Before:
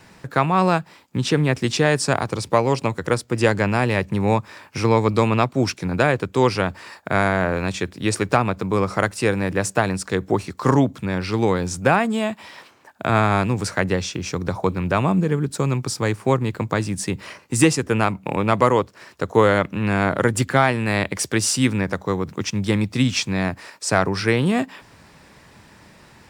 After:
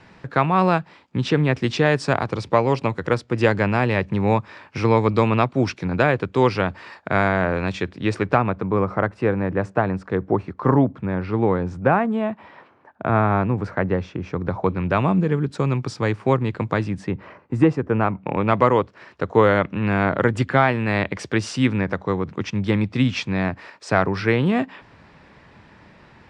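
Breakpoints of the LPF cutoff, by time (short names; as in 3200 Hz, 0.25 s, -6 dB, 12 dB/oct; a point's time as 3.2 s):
7.83 s 3700 Hz
8.91 s 1500 Hz
14.24 s 1500 Hz
14.99 s 3500 Hz
16.74 s 3500 Hz
17.28 s 1300 Hz
17.89 s 1300 Hz
18.56 s 3100 Hz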